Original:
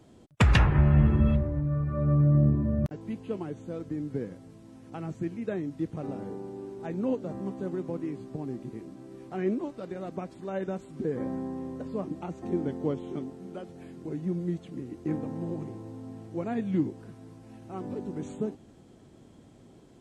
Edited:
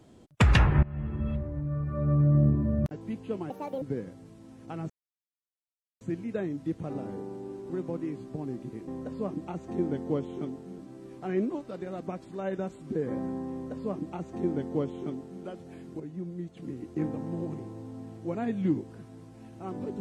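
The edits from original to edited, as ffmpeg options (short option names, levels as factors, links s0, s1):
-filter_complex "[0:a]asplit=10[s0][s1][s2][s3][s4][s5][s6][s7][s8][s9];[s0]atrim=end=0.83,asetpts=PTS-STARTPTS,afade=t=out:st=0.826:d=0.004:c=hsin:silence=0.0749894[s10];[s1]atrim=start=0.83:end=3.504,asetpts=PTS-STARTPTS,afade=t=in:d=1.94:c=qsin:silence=0.0749894[s11];[s2]atrim=start=3.5:end=4.06,asetpts=PTS-STARTPTS,asetrate=77616,aresample=44100[s12];[s3]atrim=start=4.056:end=5.14,asetpts=PTS-STARTPTS,afade=t=out:st=1.08:d=0.004:c=hsin,apad=pad_dur=1.11[s13];[s4]atrim=start=5.14:end=6.832,asetpts=PTS-STARTPTS,afade=t=in:d=0.004:c=hsin[s14];[s5]atrim=start=7.698:end=8.882[s15];[s6]atrim=start=11.618:end=13.532[s16];[s7]atrim=start=8.878:end=14.092[s17];[s8]atrim=start=14.088:end=14.662,asetpts=PTS-STARTPTS,volume=0.473[s18];[s9]atrim=start=14.658[s19];[s10][s11]concat=n=2:v=0:a=1[s20];[s20][s12]acrossfade=d=0.004:c1=hsin:c2=hsin[s21];[s13][s14]concat=n=2:v=0:a=1[s22];[s21][s22]acrossfade=d=0.004:c1=hsin:c2=hsin[s23];[s23][s15]acrossfade=d=0.004:c1=hsin:c2=hsin[s24];[s24][s16]acrossfade=d=0.004:c1=hsin:c2=hsin[s25];[s25][s17]acrossfade=d=0.004:c1=hsin:c2=hsin[s26];[s26][s18]acrossfade=d=0.004:c1=hsin:c2=hsin[s27];[s27][s19]acrossfade=d=0.004:c1=hsin:c2=hsin"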